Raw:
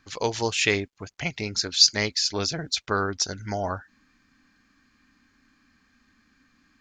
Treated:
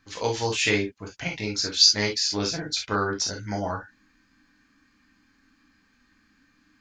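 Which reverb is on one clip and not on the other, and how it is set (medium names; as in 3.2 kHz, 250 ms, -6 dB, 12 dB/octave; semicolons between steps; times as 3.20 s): gated-style reverb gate 80 ms flat, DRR -1 dB; trim -3.5 dB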